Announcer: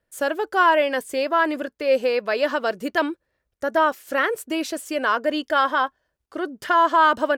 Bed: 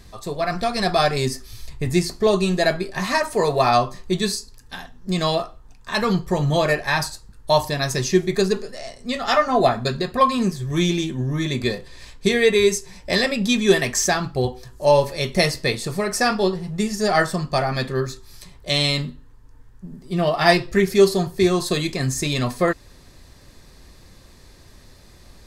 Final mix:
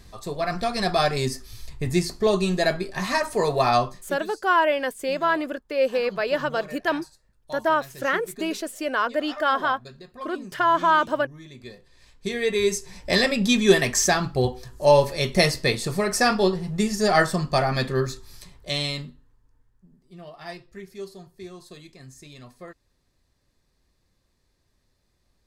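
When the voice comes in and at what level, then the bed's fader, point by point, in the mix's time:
3.90 s, -2.5 dB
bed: 3.87 s -3 dB
4.23 s -20.5 dB
11.55 s -20.5 dB
12.98 s -0.5 dB
18.21 s -0.5 dB
20.24 s -22.5 dB

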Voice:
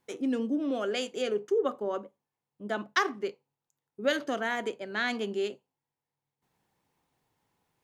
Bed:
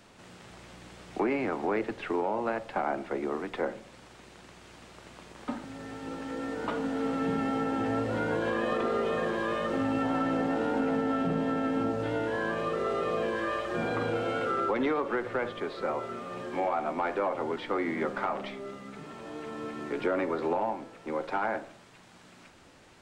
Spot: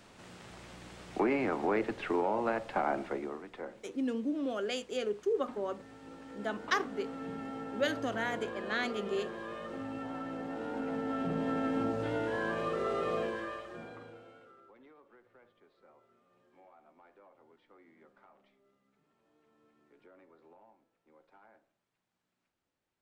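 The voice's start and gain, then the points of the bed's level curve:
3.75 s, -4.0 dB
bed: 3.05 s -1 dB
3.43 s -11.5 dB
10.39 s -11.5 dB
11.57 s -3 dB
13.18 s -3 dB
14.61 s -31 dB

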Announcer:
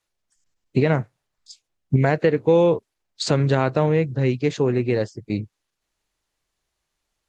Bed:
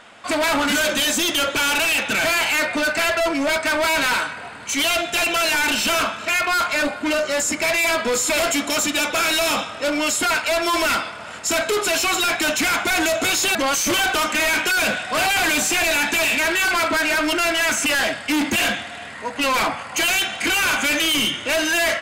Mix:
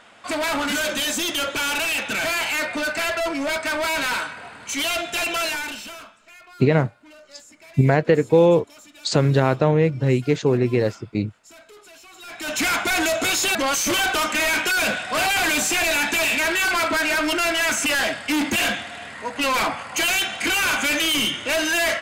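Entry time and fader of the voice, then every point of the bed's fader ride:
5.85 s, +1.5 dB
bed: 5.44 s -4 dB
6.22 s -26.5 dB
12.13 s -26.5 dB
12.6 s -1.5 dB

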